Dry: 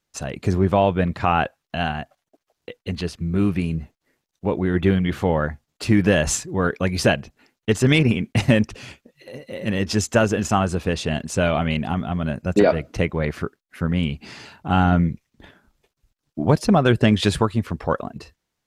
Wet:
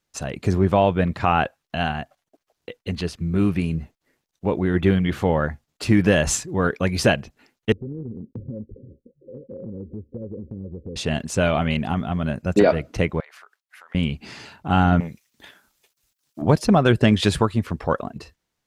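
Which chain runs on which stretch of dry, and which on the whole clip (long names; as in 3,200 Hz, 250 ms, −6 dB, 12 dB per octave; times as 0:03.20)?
0:07.72–0:10.96: Chebyshev low-pass filter 550 Hz, order 10 + downward compressor 4 to 1, threshold −32 dBFS
0:13.20–0:13.95: high-pass filter 760 Hz 24 dB per octave + downward compressor 20 to 1, threshold −42 dBFS
0:15.00–0:16.42: spectral tilt +3.5 dB per octave + saturating transformer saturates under 440 Hz
whole clip: no processing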